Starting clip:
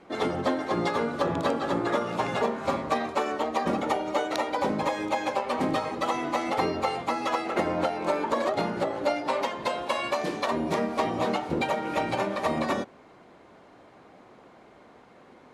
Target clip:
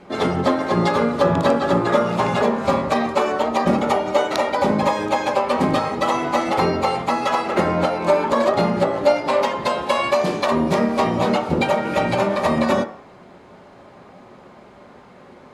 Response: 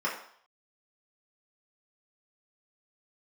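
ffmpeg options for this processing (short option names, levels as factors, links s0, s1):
-filter_complex "[0:a]asplit=2[s0][s1];[1:a]atrim=start_sample=2205,lowshelf=f=280:g=9[s2];[s1][s2]afir=irnorm=-1:irlink=0,volume=0.168[s3];[s0][s3]amix=inputs=2:normalize=0,volume=2.51"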